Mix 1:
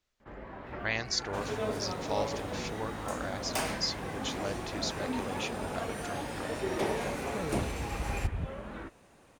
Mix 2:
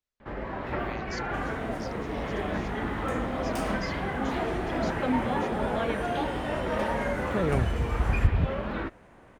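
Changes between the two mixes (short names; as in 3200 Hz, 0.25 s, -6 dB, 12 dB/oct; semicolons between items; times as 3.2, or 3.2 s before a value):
speech -12.0 dB; first sound +10.0 dB; second sound -7.0 dB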